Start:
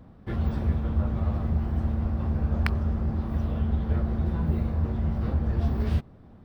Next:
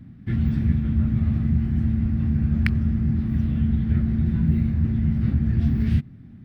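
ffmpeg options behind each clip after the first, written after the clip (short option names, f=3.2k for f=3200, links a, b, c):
-af "equalizer=f=125:t=o:w=1:g=11,equalizer=f=250:t=o:w=1:g=10,equalizer=f=500:t=o:w=1:g=-12,equalizer=f=1k:t=o:w=1:g=-10,equalizer=f=2k:t=o:w=1:g=9,volume=-1.5dB"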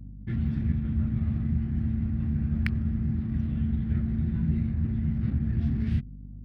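-af "anlmdn=0.1,aeval=exprs='val(0)+0.0178*(sin(2*PI*50*n/s)+sin(2*PI*2*50*n/s)/2+sin(2*PI*3*50*n/s)/3+sin(2*PI*4*50*n/s)/4+sin(2*PI*5*50*n/s)/5)':c=same,volume=-6dB"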